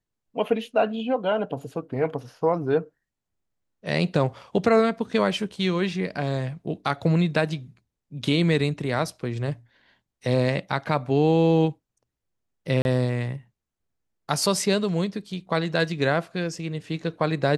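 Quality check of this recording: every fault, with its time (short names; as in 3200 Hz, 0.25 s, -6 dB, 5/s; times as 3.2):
12.82–12.85 gap 31 ms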